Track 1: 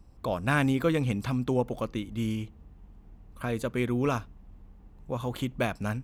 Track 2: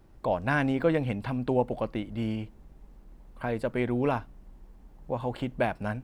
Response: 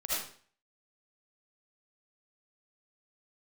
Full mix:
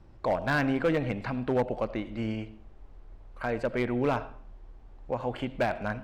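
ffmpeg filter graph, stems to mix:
-filter_complex "[0:a]acompressor=threshold=-34dB:ratio=6,volume=-2dB[a];[1:a]volume=-1,volume=0dB,asplit=2[b][c];[c]volume=-18dB[d];[2:a]atrim=start_sample=2205[e];[d][e]afir=irnorm=-1:irlink=0[f];[a][b][f]amix=inputs=3:normalize=0,lowpass=4.9k,asoftclip=type=hard:threshold=-20dB"

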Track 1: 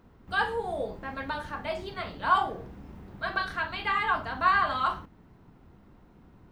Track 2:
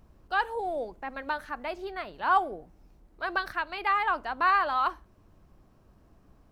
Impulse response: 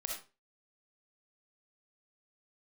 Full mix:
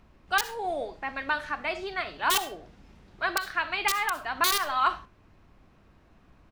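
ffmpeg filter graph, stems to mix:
-filter_complex "[0:a]lowpass=5.7k,highshelf=f=2.7k:g=12,volume=-10dB[a];[1:a]firequalizer=gain_entry='entry(170,0);entry(2500,7);entry(3900,-13)':delay=0.05:min_phase=1,aeval=exprs='(mod(4.47*val(0)+1,2)-1)/4.47':c=same,volume=-3dB,asplit=2[b][c];[c]volume=-11dB[d];[2:a]atrim=start_sample=2205[e];[d][e]afir=irnorm=-1:irlink=0[f];[a][b][f]amix=inputs=3:normalize=0,highshelf=f=2.5k:g=8,alimiter=limit=-12dB:level=0:latency=1:release=308"

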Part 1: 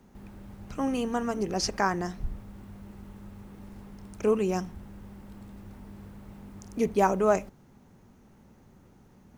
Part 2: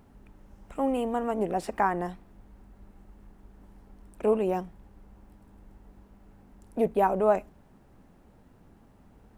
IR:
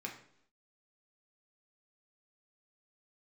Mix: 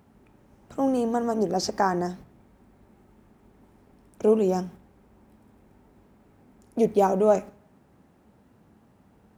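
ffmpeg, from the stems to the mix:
-filter_complex "[0:a]volume=-3dB,asplit=2[a][b];[b]volume=-11dB[c];[1:a]volume=-0.5dB,asplit=2[d][e];[e]apad=whole_len=413273[f];[a][f]sidechaingate=range=-33dB:threshold=-45dB:ratio=16:detection=peak[g];[2:a]atrim=start_sample=2205[h];[c][h]afir=irnorm=-1:irlink=0[i];[g][d][i]amix=inputs=3:normalize=0,highpass=82"

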